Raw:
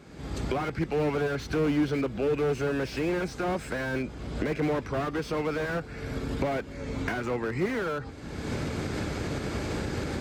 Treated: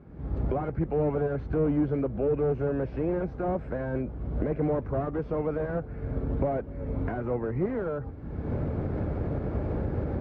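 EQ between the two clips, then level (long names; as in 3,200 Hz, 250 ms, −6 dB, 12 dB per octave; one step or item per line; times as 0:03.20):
low-pass filter 1,200 Hz 12 dB per octave
low-shelf EQ 170 Hz +11.5 dB
dynamic equaliser 590 Hz, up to +6 dB, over −42 dBFS, Q 1.5
−4.5 dB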